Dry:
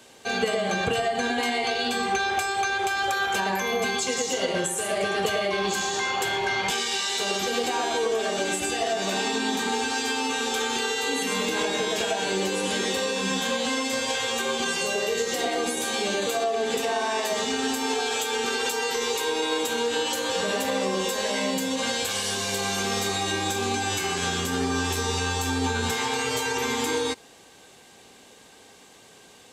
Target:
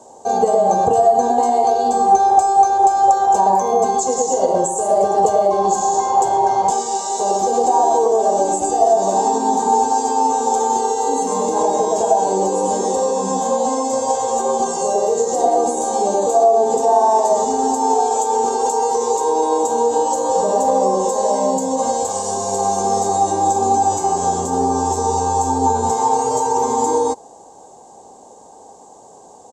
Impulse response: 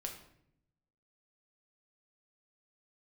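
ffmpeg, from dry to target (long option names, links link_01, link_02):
-af "firequalizer=gain_entry='entry(120,0);entry(850,15);entry(1400,-12);entry(2400,-23);entry(7100,7);entry(11000,-15)':delay=0.05:min_phase=1,volume=2.5dB"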